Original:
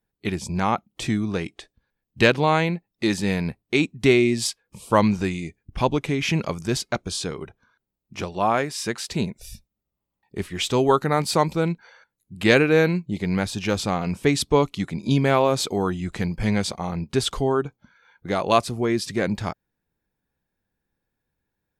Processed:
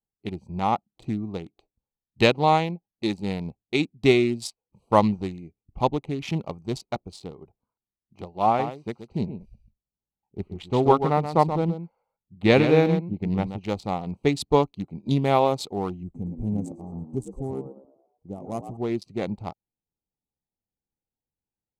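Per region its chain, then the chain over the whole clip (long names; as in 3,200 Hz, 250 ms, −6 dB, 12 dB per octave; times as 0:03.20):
0:08.46–0:13.59: bass and treble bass +3 dB, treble −11 dB + single-tap delay 129 ms −6.5 dB
0:16.03–0:18.77: drawn EQ curve 220 Hz 0 dB, 1,300 Hz −15 dB, 4,300 Hz −27 dB, 6,700 Hz +2 dB + echo with shifted repeats 112 ms, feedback 44%, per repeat +67 Hz, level −7 dB
whole clip: adaptive Wiener filter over 25 samples; thirty-one-band graphic EQ 800 Hz +7 dB, 1,600 Hz −11 dB, 4,000 Hz +3 dB; expander for the loud parts 1.5 to 1, over −40 dBFS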